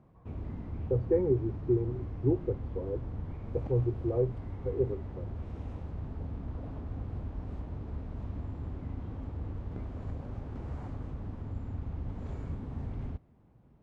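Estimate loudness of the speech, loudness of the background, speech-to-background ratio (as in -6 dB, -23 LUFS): -32.5 LUFS, -40.5 LUFS, 8.0 dB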